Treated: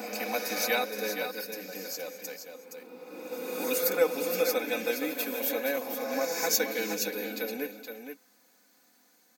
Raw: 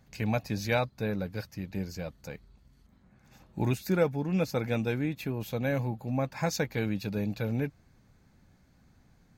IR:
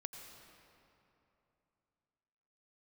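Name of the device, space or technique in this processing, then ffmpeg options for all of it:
ghost voice: -filter_complex "[0:a]areverse[link_01];[1:a]atrim=start_sample=2205[link_02];[link_01][link_02]afir=irnorm=-1:irlink=0,areverse,highpass=frequency=310:width=0.5412,highpass=frequency=310:width=1.3066,aemphasis=mode=production:type=75fm,aecho=1:1:4:0.76,aecho=1:1:470:0.422,volume=2.5dB"

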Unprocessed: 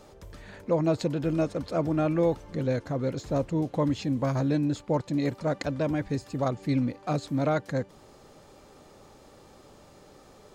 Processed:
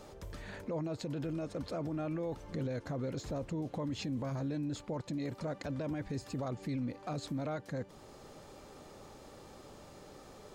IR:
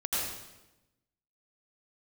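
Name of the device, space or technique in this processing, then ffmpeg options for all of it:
stacked limiters: -af "alimiter=limit=-19.5dB:level=0:latency=1:release=500,alimiter=level_in=2dB:limit=-24dB:level=0:latency=1:release=24,volume=-2dB,alimiter=level_in=6dB:limit=-24dB:level=0:latency=1:release=114,volume=-6dB"

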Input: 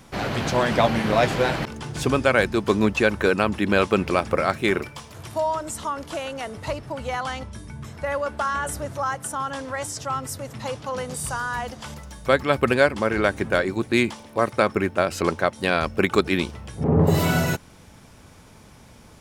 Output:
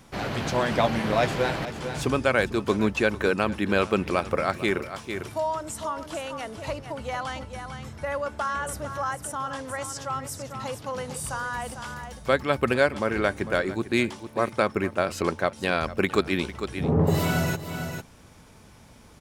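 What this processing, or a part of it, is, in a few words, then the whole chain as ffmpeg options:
ducked delay: -filter_complex "[0:a]asplit=3[link_01][link_02][link_03];[link_02]adelay=450,volume=-7.5dB[link_04];[link_03]apad=whole_len=866902[link_05];[link_04][link_05]sidechaincompress=threshold=-29dB:ratio=8:attack=41:release=310[link_06];[link_01][link_06]amix=inputs=2:normalize=0,volume=-3.5dB"

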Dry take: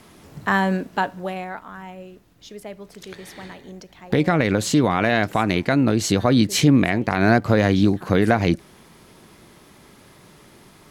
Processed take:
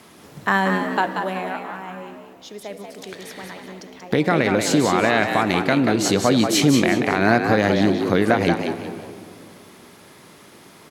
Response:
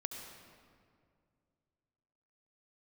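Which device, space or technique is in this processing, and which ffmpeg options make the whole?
compressed reverb return: -filter_complex "[0:a]highpass=frequency=200:poles=1,asplit=2[link_01][link_02];[1:a]atrim=start_sample=2205[link_03];[link_02][link_03]afir=irnorm=-1:irlink=0,acompressor=threshold=-22dB:ratio=6,volume=-3.5dB[link_04];[link_01][link_04]amix=inputs=2:normalize=0,asplit=5[link_05][link_06][link_07][link_08][link_09];[link_06]adelay=184,afreqshift=69,volume=-6dB[link_10];[link_07]adelay=368,afreqshift=138,volume=-15.6dB[link_11];[link_08]adelay=552,afreqshift=207,volume=-25.3dB[link_12];[link_09]adelay=736,afreqshift=276,volume=-34.9dB[link_13];[link_05][link_10][link_11][link_12][link_13]amix=inputs=5:normalize=0,volume=-1dB"

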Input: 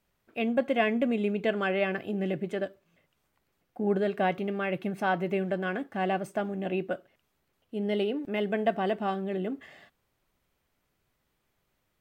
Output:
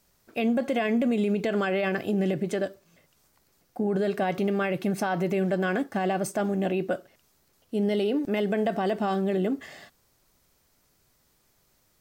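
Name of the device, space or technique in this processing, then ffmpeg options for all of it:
over-bright horn tweeter: -af "highshelf=frequency=3900:width_type=q:width=1.5:gain=7,alimiter=level_in=1dB:limit=-24dB:level=0:latency=1:release=41,volume=-1dB,volume=7dB"

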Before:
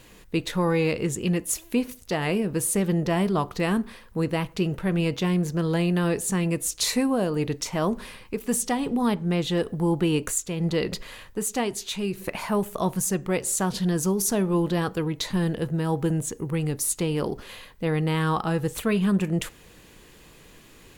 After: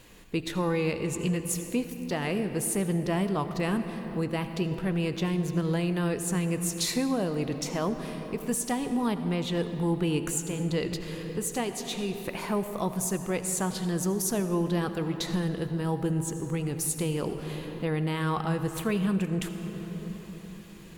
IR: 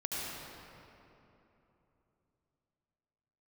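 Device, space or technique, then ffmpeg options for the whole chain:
ducked reverb: -filter_complex "[0:a]asplit=3[link_01][link_02][link_03];[1:a]atrim=start_sample=2205[link_04];[link_02][link_04]afir=irnorm=-1:irlink=0[link_05];[link_03]apad=whole_len=925124[link_06];[link_05][link_06]sidechaincompress=threshold=-27dB:ratio=8:attack=26:release=1130,volume=-3.5dB[link_07];[link_01][link_07]amix=inputs=2:normalize=0,volume=-6dB"

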